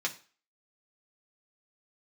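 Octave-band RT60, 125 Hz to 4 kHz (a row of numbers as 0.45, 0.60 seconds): 0.30, 0.35, 0.35, 0.40, 0.40, 0.40 seconds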